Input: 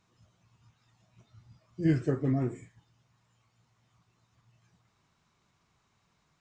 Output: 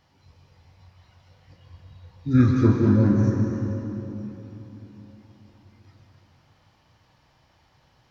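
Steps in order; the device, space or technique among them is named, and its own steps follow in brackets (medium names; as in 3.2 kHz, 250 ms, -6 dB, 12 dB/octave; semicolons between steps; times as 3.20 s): slowed and reverbed (tape speed -21%; reverberation RT60 3.6 s, pre-delay 115 ms, DRR 0.5 dB); trim +8 dB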